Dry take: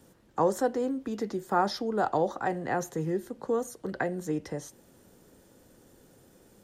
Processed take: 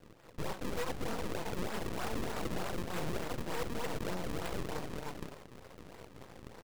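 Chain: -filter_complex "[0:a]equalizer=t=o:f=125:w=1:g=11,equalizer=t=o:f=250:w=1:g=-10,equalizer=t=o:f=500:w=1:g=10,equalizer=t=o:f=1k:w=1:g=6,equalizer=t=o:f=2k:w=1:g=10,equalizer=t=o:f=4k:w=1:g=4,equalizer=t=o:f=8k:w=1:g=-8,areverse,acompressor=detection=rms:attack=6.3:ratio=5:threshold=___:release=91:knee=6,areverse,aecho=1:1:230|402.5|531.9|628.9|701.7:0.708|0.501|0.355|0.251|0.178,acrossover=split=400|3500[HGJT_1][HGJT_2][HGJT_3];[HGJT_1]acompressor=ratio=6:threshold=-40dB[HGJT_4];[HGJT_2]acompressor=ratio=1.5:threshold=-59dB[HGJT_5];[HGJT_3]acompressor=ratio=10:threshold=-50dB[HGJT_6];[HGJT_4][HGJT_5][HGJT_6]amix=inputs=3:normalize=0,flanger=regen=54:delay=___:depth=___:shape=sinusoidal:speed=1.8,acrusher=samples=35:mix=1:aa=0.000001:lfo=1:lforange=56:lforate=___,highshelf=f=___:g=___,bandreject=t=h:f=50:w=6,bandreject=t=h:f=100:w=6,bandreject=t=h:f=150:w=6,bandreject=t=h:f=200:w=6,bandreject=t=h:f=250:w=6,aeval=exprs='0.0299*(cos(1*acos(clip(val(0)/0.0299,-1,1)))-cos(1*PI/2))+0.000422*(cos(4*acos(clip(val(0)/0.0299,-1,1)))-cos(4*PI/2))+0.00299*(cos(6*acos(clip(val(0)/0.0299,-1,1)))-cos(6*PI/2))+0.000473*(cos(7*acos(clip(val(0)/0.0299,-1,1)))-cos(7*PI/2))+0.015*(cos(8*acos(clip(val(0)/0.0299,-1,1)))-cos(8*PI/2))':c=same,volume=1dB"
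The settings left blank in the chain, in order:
-31dB, 4.2, 2, 3.3, 10k, -4.5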